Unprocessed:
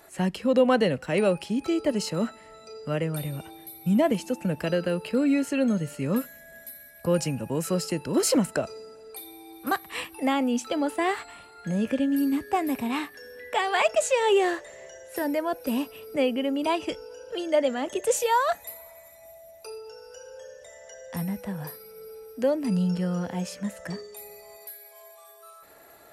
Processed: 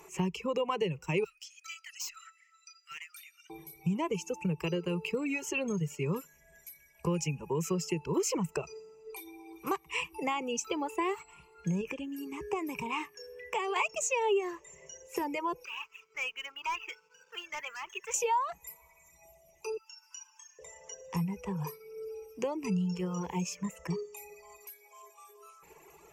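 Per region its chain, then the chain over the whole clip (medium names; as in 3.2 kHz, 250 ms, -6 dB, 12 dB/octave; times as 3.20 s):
1.24–3.50 s: rippled Chebyshev high-pass 1.3 kHz, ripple 6 dB + hard clipper -36 dBFS
11.81–13.76 s: high-pass 55 Hz + peaking EQ 4.1 kHz -4.5 dB 0.3 oct + compression 2.5:1, threshold -28 dBFS
15.65–18.14 s: ladder band-pass 1.7 kHz, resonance 60% + waveshaping leveller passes 3
19.77–20.59 s: steep high-pass 960 Hz 48 dB/octave + treble shelf 11 kHz +4.5 dB
whole clip: reverb removal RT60 1.3 s; rippled EQ curve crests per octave 0.75, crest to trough 17 dB; compression 3:1, threshold -28 dBFS; trim -2 dB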